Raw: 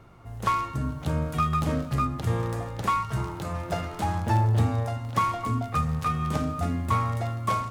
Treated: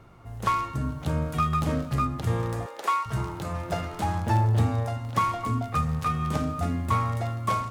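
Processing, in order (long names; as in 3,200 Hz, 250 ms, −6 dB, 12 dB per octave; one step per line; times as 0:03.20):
0:02.66–0:03.06: high-pass filter 380 Hz 24 dB per octave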